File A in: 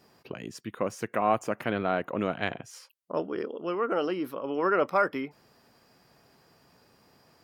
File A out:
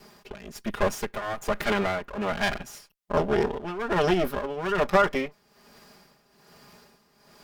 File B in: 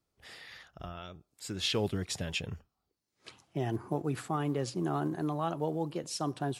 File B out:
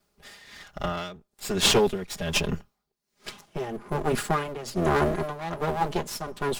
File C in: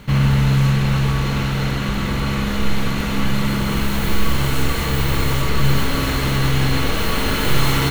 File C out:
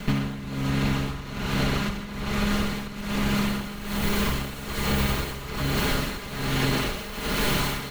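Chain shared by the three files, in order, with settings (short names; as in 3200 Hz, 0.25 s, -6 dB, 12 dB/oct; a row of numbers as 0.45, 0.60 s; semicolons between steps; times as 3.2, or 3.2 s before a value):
minimum comb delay 4.9 ms; compressor 10:1, threshold -26 dBFS; tremolo 1.2 Hz, depth 77%; match loudness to -27 LUFS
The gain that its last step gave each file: +11.0, +13.5, +6.5 dB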